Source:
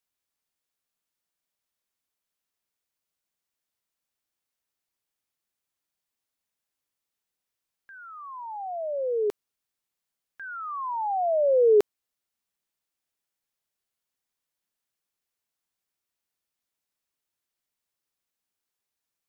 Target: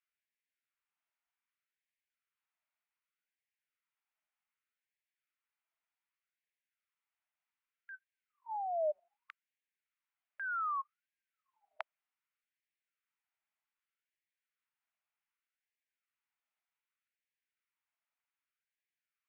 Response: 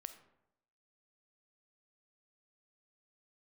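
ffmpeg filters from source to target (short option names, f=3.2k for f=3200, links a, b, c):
-af "highpass=430,equalizer=f=520:t=q:w=4:g=4,equalizer=f=750:t=q:w=4:g=-4,equalizer=f=1.1k:t=q:w=4:g=-4,equalizer=f=1.7k:t=q:w=4:g=-5,lowpass=f=2.1k:w=0.5412,lowpass=f=2.1k:w=1.3066,crystalizer=i=4.5:c=0,afftfilt=real='re*gte(b*sr/1024,590*pow(1600/590,0.5+0.5*sin(2*PI*0.65*pts/sr)))':imag='im*gte(b*sr/1024,590*pow(1600/590,0.5+0.5*sin(2*PI*0.65*pts/sr)))':win_size=1024:overlap=0.75"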